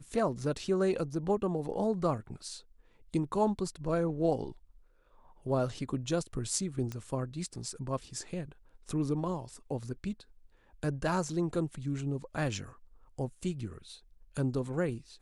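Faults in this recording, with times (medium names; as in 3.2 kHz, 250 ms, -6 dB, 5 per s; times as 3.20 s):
6.92 s: pop -24 dBFS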